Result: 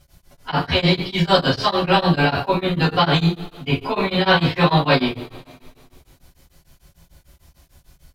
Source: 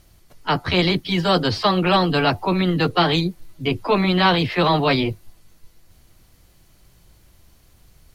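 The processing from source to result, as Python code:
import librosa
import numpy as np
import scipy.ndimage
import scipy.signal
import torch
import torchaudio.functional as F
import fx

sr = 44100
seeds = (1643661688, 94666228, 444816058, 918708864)

y = fx.rev_double_slope(x, sr, seeds[0], early_s=0.42, late_s=2.2, knee_db=-22, drr_db=-9.5)
y = y * np.abs(np.cos(np.pi * 6.7 * np.arange(len(y)) / sr))
y = y * 10.0 ** (-6.0 / 20.0)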